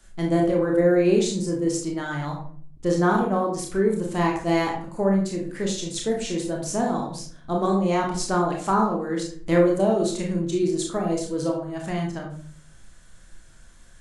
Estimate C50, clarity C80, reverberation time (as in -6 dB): 5.0 dB, 10.0 dB, 0.50 s